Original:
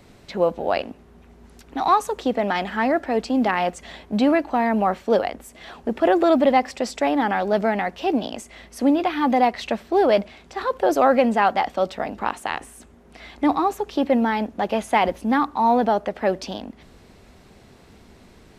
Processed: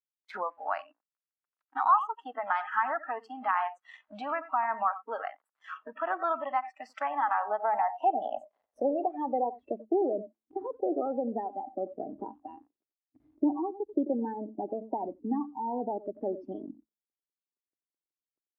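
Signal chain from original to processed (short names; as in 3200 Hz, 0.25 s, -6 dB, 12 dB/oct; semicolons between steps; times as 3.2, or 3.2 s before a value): bell 1000 Hz +11 dB 1.2 oct; crossover distortion -38 dBFS; compressor 2.5:1, threshold -29 dBFS, peak gain reduction 17 dB; de-hum 54.94 Hz, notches 4; speakerphone echo 90 ms, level -11 dB; band-pass sweep 1300 Hz -> 330 Hz, 7.08–9.94; spectral noise reduction 25 dB; gain +4.5 dB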